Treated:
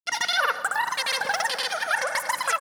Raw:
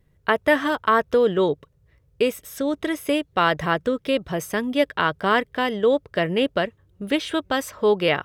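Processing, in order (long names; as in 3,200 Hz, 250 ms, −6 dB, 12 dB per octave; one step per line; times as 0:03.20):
brickwall limiter −14 dBFS, peak gain reduction 8.5 dB
change of speed 3.16×
echo with a time of its own for lows and highs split 1,600 Hz, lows 190 ms, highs 85 ms, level −10 dB
on a send at −11.5 dB: convolution reverb RT60 2.2 s, pre-delay 3 ms
on the sum: granular cloud, pitch spread up and down by 0 semitones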